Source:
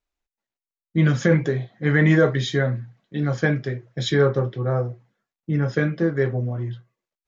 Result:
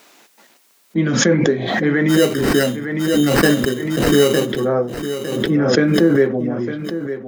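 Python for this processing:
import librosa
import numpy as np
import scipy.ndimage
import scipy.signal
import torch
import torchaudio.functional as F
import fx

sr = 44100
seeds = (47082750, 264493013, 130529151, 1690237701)

y = fx.rider(x, sr, range_db=5, speed_s=0.5)
y = fx.dynamic_eq(y, sr, hz=250.0, q=0.91, threshold_db=-33.0, ratio=4.0, max_db=7)
y = scipy.signal.sosfilt(scipy.signal.butter(4, 190.0, 'highpass', fs=sr, output='sos'), y)
y = fx.sample_hold(y, sr, seeds[0], rate_hz=3400.0, jitter_pct=0, at=(2.08, 4.45), fade=0.02)
y = fx.echo_feedback(y, sr, ms=907, feedback_pct=24, wet_db=-11.0)
y = fx.pre_swell(y, sr, db_per_s=34.0)
y = y * librosa.db_to_amplitude(2.5)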